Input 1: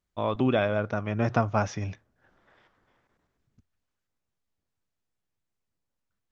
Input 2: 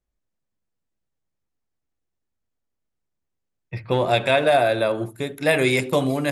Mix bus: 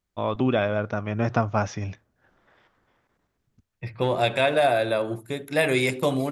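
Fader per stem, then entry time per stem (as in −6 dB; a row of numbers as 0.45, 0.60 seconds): +1.5, −3.0 decibels; 0.00, 0.10 seconds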